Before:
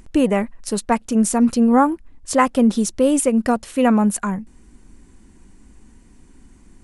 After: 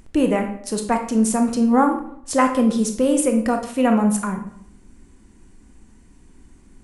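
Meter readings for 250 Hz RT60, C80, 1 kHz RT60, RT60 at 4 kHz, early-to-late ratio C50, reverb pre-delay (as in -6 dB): 0.85 s, 12.5 dB, 0.65 s, 0.50 s, 8.0 dB, 19 ms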